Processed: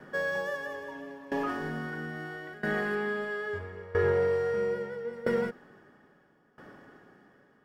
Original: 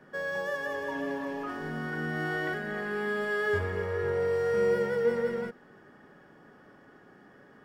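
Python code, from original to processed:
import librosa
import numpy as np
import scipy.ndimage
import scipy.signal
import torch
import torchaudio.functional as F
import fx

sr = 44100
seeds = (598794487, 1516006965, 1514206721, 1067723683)

y = fx.high_shelf(x, sr, hz=6500.0, db=-8.5, at=(2.95, 5.13))
y = fx.tremolo_decay(y, sr, direction='decaying', hz=0.76, depth_db=20)
y = y * 10.0 ** (6.5 / 20.0)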